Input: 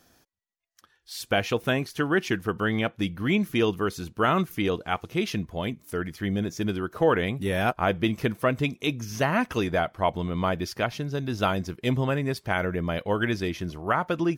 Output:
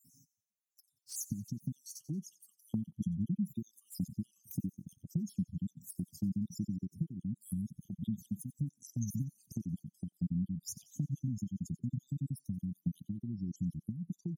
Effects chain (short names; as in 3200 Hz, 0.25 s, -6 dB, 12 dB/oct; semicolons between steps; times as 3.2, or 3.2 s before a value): random spectral dropouts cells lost 54%; compressor 16:1, threshold -35 dBFS, peak gain reduction 18 dB; inverse Chebyshev band-stop 540–2300 Hz, stop band 60 dB; bell 4100 Hz -6.5 dB 0.4 oct; spectral gate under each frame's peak -25 dB strong; HPF 180 Hz 12 dB/oct; high shelf 5200 Hz -6.5 dB; envelope flanger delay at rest 9.5 ms, full sweep at -49 dBFS; thin delay 90 ms, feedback 48%, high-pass 1500 Hz, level -17.5 dB; gain +13 dB